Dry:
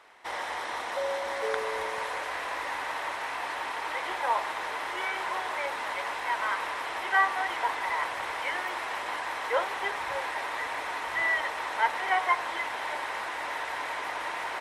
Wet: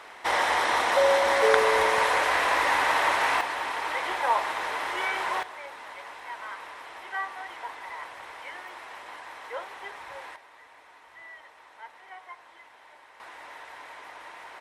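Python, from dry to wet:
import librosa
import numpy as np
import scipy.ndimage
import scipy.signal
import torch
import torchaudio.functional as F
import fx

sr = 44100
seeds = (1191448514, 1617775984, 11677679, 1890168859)

y = fx.gain(x, sr, db=fx.steps((0.0, 10.0), (3.41, 3.0), (5.43, -9.0), (10.36, -19.5), (13.2, -10.5)))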